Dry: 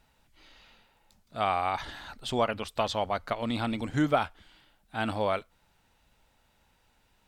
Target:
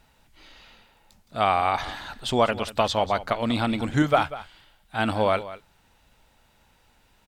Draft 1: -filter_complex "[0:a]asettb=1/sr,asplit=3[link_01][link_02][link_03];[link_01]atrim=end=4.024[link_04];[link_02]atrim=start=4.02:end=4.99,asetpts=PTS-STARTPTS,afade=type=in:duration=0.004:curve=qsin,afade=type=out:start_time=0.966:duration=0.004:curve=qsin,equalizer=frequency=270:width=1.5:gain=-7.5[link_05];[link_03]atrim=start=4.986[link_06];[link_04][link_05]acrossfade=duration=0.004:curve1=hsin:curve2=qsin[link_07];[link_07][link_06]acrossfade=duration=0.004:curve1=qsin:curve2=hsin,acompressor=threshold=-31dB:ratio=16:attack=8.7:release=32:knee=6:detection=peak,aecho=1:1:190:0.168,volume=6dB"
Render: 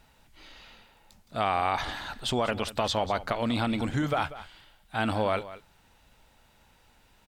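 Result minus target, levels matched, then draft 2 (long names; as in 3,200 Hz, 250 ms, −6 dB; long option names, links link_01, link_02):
downward compressor: peak gain reduction +11.5 dB
-filter_complex "[0:a]asettb=1/sr,asplit=3[link_01][link_02][link_03];[link_01]atrim=end=4.024[link_04];[link_02]atrim=start=4.02:end=4.99,asetpts=PTS-STARTPTS,afade=type=in:duration=0.004:curve=qsin,afade=type=out:start_time=0.966:duration=0.004:curve=qsin,equalizer=frequency=270:width=1.5:gain=-7.5[link_05];[link_03]atrim=start=4.986[link_06];[link_04][link_05]acrossfade=duration=0.004:curve1=hsin:curve2=qsin[link_07];[link_07][link_06]acrossfade=duration=0.004:curve1=qsin:curve2=hsin,aecho=1:1:190:0.168,volume=6dB"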